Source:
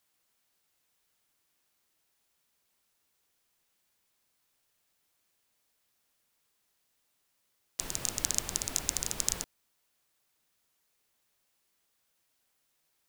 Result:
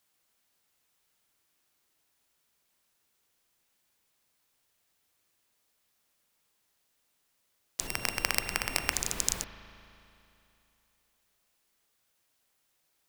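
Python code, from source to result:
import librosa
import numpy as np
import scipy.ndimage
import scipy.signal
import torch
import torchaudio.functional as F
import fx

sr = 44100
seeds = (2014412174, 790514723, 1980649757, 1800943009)

y = fx.sample_sort(x, sr, block=16, at=(7.87, 8.92))
y = fx.rev_spring(y, sr, rt60_s=2.9, pass_ms=(37,), chirp_ms=25, drr_db=8.0)
y = y * librosa.db_to_amplitude(1.0)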